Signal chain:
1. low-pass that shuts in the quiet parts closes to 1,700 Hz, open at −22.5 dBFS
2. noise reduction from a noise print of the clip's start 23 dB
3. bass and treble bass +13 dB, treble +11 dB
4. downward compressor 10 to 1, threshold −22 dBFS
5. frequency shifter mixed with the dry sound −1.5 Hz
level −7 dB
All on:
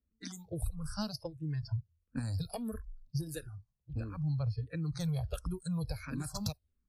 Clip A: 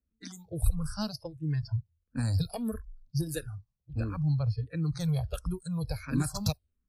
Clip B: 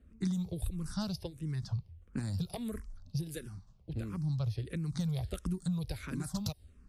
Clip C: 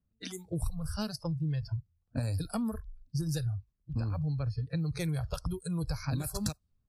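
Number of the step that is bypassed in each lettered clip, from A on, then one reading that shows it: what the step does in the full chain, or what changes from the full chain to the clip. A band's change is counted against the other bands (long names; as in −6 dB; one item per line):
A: 4, average gain reduction 4.0 dB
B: 2, 250 Hz band +3.5 dB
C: 5, change in momentary loudness spread −3 LU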